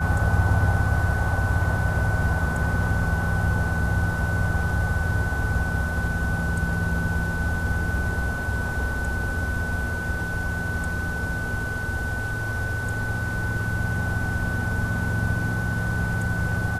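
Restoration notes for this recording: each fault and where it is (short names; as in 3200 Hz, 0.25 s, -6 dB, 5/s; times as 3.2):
tone 1500 Hz -29 dBFS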